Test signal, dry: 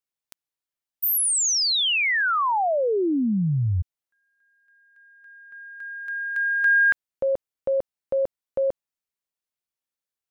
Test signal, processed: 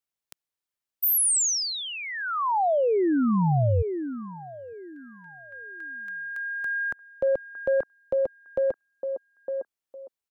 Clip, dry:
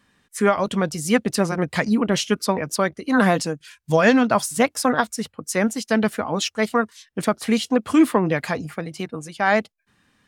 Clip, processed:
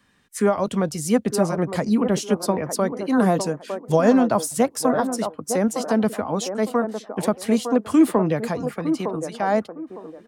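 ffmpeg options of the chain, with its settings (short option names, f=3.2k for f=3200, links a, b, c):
-filter_complex "[0:a]acrossover=split=240|1100|5800[a][b][c][d];[b]aecho=1:1:908|1816|2724:0.531|0.133|0.0332[e];[c]acompressor=threshold=-38dB:ratio=6:attack=5.3:release=122:detection=peak[f];[a][e][f][d]amix=inputs=4:normalize=0"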